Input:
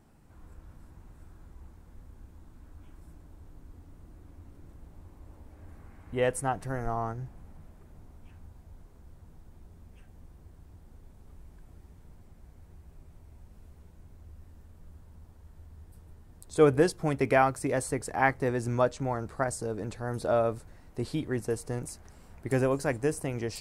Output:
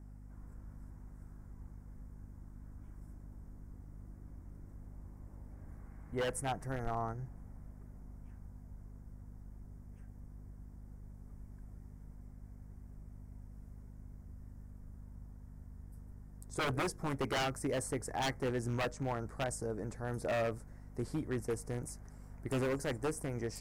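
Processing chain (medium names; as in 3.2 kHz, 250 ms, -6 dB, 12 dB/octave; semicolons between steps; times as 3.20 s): hum 50 Hz, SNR 13 dB; high-order bell 3.3 kHz -11.5 dB 1 oct; wavefolder -23 dBFS; trim -5 dB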